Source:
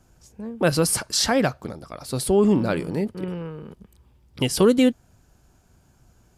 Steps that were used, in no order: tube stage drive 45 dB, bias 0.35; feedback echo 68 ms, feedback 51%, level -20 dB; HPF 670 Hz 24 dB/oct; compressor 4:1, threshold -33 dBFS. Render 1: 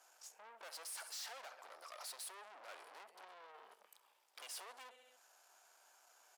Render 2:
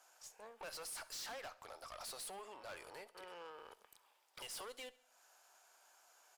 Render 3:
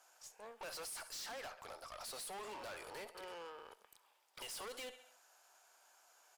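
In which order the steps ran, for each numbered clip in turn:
feedback echo > compressor > tube stage > HPF; compressor > HPF > tube stage > feedback echo; HPF > compressor > feedback echo > tube stage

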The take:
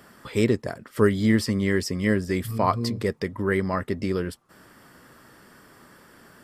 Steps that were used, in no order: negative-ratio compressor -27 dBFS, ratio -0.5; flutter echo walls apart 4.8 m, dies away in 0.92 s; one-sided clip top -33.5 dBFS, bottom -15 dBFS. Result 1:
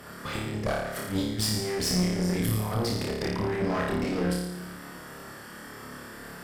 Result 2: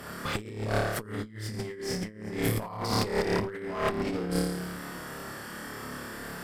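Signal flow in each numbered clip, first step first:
negative-ratio compressor > flutter echo > one-sided clip; flutter echo > negative-ratio compressor > one-sided clip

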